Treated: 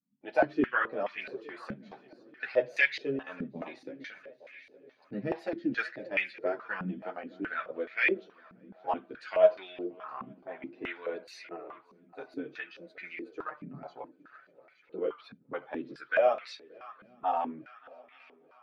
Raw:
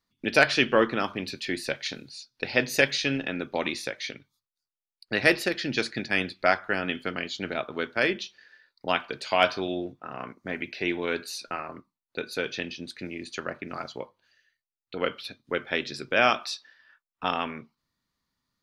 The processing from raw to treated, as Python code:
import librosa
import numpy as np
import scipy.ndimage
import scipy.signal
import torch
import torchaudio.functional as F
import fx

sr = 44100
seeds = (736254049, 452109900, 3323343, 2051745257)

p1 = fx.spec_quant(x, sr, step_db=15)
p2 = fx.chorus_voices(p1, sr, voices=6, hz=0.15, base_ms=11, depth_ms=4.9, mix_pct=55)
p3 = p2 + fx.echo_heads(p2, sr, ms=289, heads='second and third', feedback_pct=51, wet_db=-21.5, dry=0)
p4 = fx.filter_held_bandpass(p3, sr, hz=4.7, low_hz=210.0, high_hz=2100.0)
y = F.gain(torch.from_numpy(p4), 7.0).numpy()